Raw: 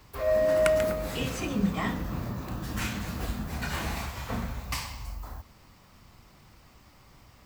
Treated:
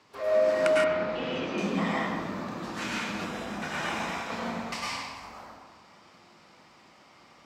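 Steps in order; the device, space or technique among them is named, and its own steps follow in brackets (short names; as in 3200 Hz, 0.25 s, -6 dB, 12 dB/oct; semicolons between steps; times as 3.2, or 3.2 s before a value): supermarket ceiling speaker (BPF 250–6400 Hz; reverb RT60 1.3 s, pre-delay 94 ms, DRR -5 dB); 0.84–1.58 air absorption 210 m; 3.24–4.31 notch 4400 Hz, Q 6.1; gain -2 dB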